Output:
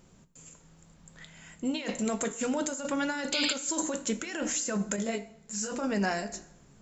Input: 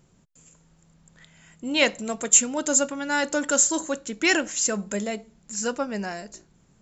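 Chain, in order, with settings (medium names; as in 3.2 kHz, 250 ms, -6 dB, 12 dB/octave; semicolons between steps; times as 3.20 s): hum notches 60/120/180/240/300 Hz; compressor with a negative ratio -30 dBFS, ratio -1; 3.32–3.53 s: painted sound noise 2.1–5.1 kHz -28 dBFS; flange 0.64 Hz, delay 3.2 ms, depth 7.9 ms, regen -71%; plate-style reverb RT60 0.96 s, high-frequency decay 0.75×, DRR 13 dB; 4.96–5.72 s: detune thickener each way 29 cents; trim +2.5 dB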